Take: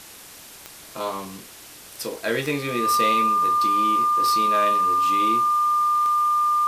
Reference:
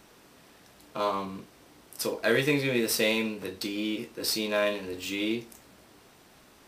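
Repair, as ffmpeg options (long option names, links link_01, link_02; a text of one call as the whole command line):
ffmpeg -i in.wav -af "adeclick=threshold=4,bandreject=frequency=1200:width=30,afwtdn=0.0079" out.wav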